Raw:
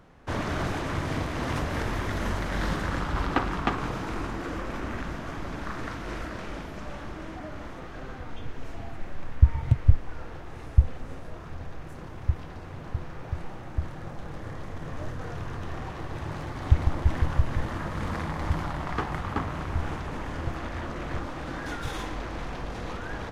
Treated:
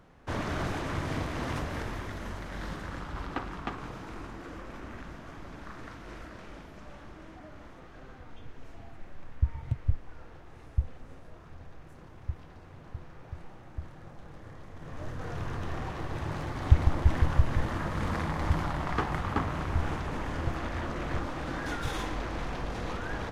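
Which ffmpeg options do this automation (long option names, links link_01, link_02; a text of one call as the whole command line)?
ffmpeg -i in.wav -af "volume=6.5dB,afade=type=out:start_time=1.34:duration=0.87:silence=0.473151,afade=type=in:start_time=14.73:duration=0.71:silence=0.334965" out.wav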